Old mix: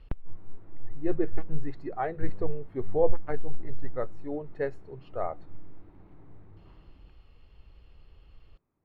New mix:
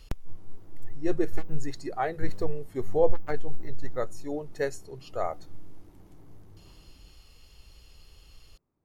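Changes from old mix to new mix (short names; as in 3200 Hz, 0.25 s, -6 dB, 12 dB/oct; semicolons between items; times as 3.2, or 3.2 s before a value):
background: add bell 5200 Hz -15 dB 3 oct; master: remove air absorption 490 m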